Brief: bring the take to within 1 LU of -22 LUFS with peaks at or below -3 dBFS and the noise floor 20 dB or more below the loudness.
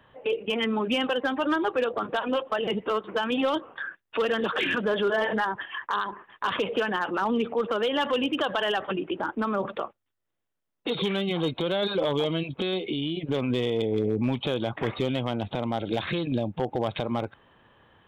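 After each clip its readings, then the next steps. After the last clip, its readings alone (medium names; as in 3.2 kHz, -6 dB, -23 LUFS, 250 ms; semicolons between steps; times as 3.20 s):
clipped samples 0.6%; clipping level -18.0 dBFS; loudness -27.5 LUFS; peak level -18.0 dBFS; loudness target -22.0 LUFS
-> clip repair -18 dBFS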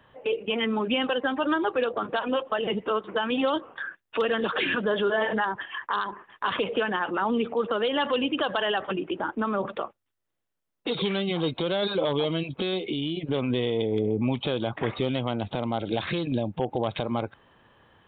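clipped samples 0.0%; loudness -27.5 LUFS; peak level -15.0 dBFS; loudness target -22.0 LUFS
-> trim +5.5 dB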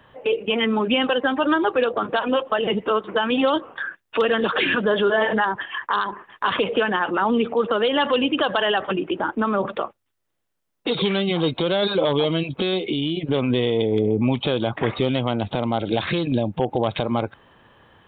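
loudness -22.0 LUFS; peak level -9.5 dBFS; noise floor -75 dBFS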